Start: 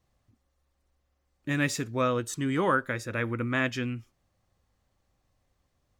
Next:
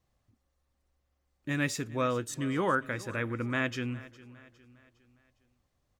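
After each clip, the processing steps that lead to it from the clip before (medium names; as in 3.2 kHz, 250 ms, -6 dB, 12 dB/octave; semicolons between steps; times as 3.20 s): feedback delay 408 ms, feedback 45%, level -19 dB; trim -3 dB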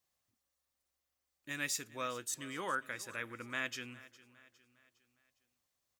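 tilt EQ +3.5 dB/octave; trim -8.5 dB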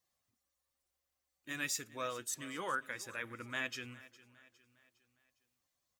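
coarse spectral quantiser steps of 15 dB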